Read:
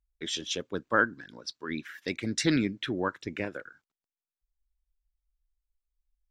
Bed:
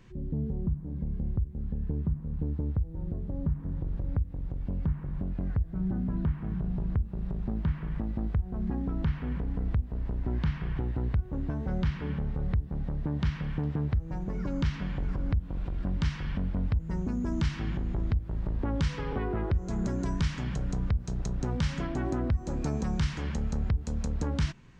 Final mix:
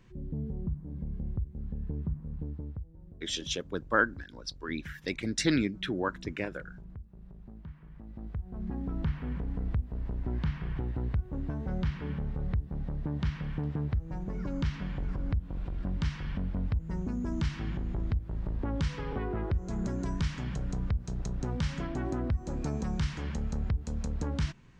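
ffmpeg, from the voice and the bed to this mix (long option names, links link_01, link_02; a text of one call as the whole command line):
ffmpeg -i stem1.wav -i stem2.wav -filter_complex "[0:a]adelay=3000,volume=-1dB[link_01];[1:a]volume=10dB,afade=type=out:start_time=2.22:duration=0.79:silence=0.237137,afade=type=in:start_time=7.98:duration=1:silence=0.199526[link_02];[link_01][link_02]amix=inputs=2:normalize=0" out.wav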